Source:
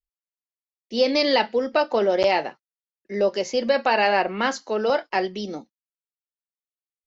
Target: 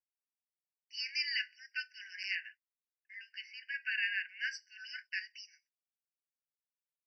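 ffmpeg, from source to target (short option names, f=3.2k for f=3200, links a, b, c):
-filter_complex "[0:a]asettb=1/sr,asplit=3[a][b][c];[a]atrim=end=2.354[d];[b]atrim=start=2.35:end=4.29,asetpts=PTS-STARTPTS,afade=t=in:d=0.004:c=qsin,afade=t=out:st=1.936:d=0.004:c=qsin,lowpass=f=3.6k:w=0.5412,lowpass=f=3.6k:w=1.3066[e];[c]atrim=start=4.286[f];[d][e]acrossfade=d=0.004:c1=hsin:c2=qsin[g];[g][f]acrossfade=d=0.004:c1=qsin:c2=hsin,afftfilt=real='re*eq(mod(floor(b*sr/1024/1500),2),1)':imag='im*eq(mod(floor(b*sr/1024/1500),2),1)':win_size=1024:overlap=0.75,volume=-8dB"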